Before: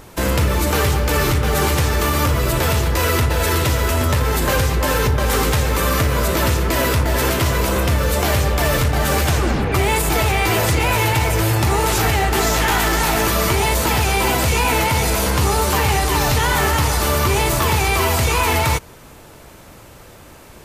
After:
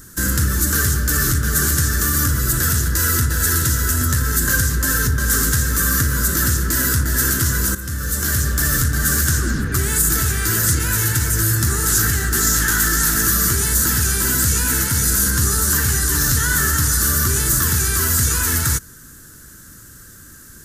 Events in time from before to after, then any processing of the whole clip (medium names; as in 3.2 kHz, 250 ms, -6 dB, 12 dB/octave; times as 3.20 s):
7.75–8.70 s: fade in equal-power, from -13 dB
whole clip: FFT filter 270 Hz 0 dB, 800 Hz -23 dB, 1.6 kHz +7 dB, 2.3 kHz -15 dB, 6.7 kHz +9 dB; trim -1 dB